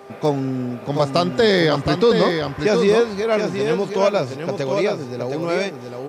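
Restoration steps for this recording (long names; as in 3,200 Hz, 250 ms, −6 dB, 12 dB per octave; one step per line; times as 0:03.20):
hum removal 397.8 Hz, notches 3
echo removal 720 ms −5.5 dB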